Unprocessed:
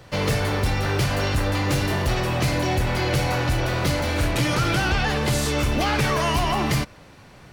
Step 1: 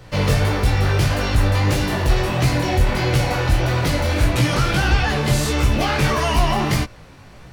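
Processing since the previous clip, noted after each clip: low shelf 73 Hz +9 dB; chorus 1.6 Hz, delay 16 ms, depth 6.1 ms; gain +5 dB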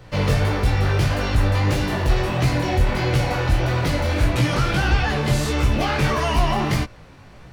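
bell 14000 Hz -5 dB 1.9 oct; gain -1.5 dB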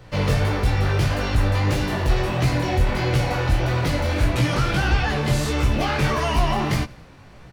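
feedback echo 89 ms, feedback 52%, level -23.5 dB; gain -1 dB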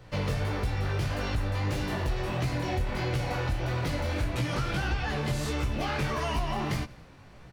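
compressor 3:1, threshold -21 dBFS, peak gain reduction 6.5 dB; gain -5.5 dB

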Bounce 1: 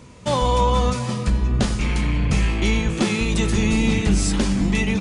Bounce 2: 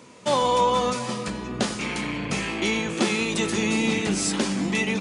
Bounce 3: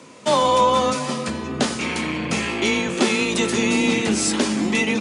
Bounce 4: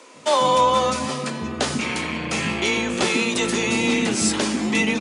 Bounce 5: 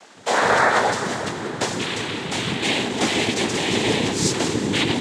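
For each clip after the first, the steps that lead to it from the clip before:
HPF 250 Hz 12 dB/oct
frequency shift +19 Hz; gain +4 dB
bands offset in time highs, lows 0.14 s, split 310 Hz
noise vocoder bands 6; reverb RT60 4.9 s, pre-delay 37 ms, DRR 11 dB

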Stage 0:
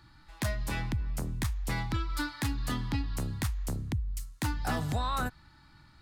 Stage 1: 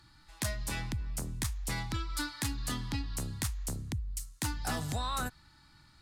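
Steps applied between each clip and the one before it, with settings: bell 8300 Hz +9.5 dB 2.1 oct; gain -4 dB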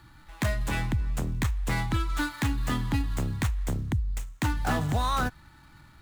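median filter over 9 samples; gain +8.5 dB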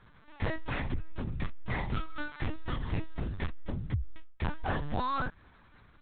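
LPC vocoder at 8 kHz pitch kept; gain -5 dB

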